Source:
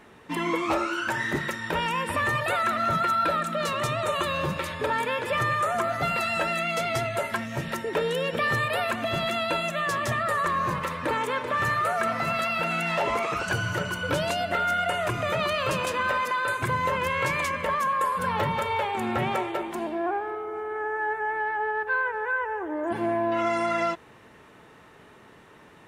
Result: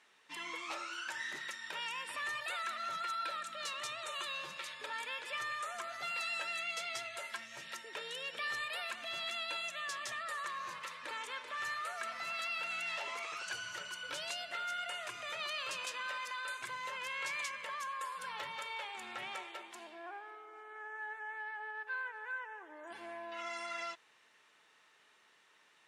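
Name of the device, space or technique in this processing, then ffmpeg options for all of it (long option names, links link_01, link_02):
piezo pickup straight into a mixer: -af "lowpass=5500,aderivative"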